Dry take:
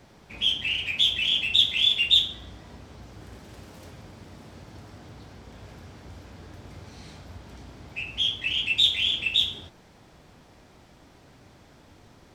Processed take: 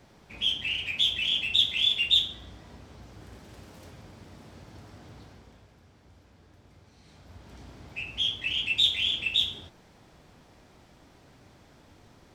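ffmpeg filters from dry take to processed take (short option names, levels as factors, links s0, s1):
-af "volume=2.24,afade=t=out:st=5.19:d=0.49:silence=0.334965,afade=t=in:st=7.03:d=0.61:silence=0.316228"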